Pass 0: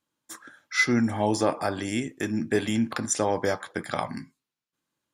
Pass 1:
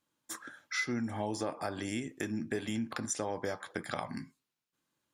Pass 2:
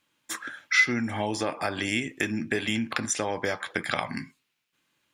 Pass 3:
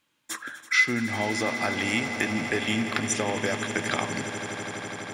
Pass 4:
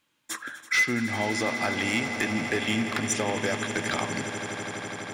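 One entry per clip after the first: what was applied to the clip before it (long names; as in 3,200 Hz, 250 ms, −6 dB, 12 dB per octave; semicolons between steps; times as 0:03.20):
downward compressor 3 to 1, threshold −35 dBFS, peak gain reduction 13 dB
parametric band 2,500 Hz +10.5 dB 1.3 octaves; level +5.5 dB
echo that builds up and dies away 83 ms, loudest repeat 8, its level −15 dB
hard clipping −17.5 dBFS, distortion −16 dB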